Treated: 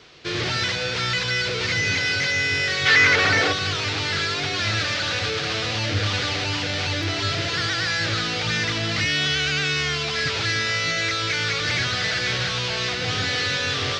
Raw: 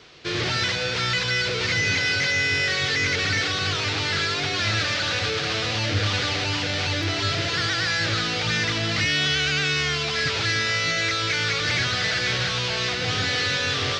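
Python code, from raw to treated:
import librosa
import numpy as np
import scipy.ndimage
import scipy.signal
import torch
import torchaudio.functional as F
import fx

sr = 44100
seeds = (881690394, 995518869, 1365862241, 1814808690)

y = fx.peak_eq(x, sr, hz=fx.line((2.85, 1700.0), (3.52, 570.0)), db=11.5, octaves=2.4, at=(2.85, 3.52), fade=0.02)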